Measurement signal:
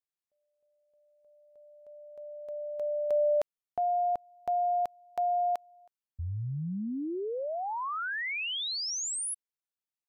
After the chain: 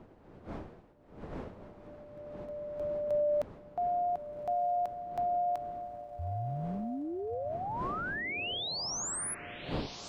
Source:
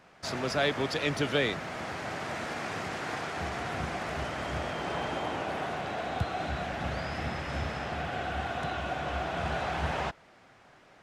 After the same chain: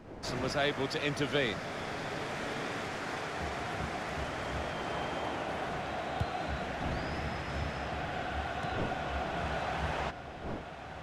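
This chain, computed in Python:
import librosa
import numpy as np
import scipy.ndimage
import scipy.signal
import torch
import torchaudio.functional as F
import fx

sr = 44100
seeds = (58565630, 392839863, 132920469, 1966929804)

y = fx.dmg_wind(x, sr, seeds[0], corner_hz=480.0, level_db=-45.0)
y = fx.echo_diffused(y, sr, ms=1242, feedback_pct=60, wet_db=-11)
y = y * librosa.db_to_amplitude(-3.0)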